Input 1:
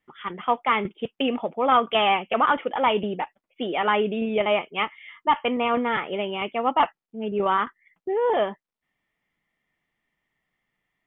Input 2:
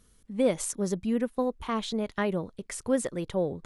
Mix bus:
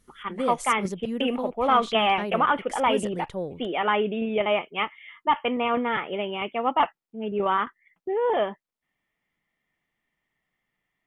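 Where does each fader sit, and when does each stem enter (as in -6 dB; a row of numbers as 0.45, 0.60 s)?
-1.5, -3.5 dB; 0.00, 0.00 s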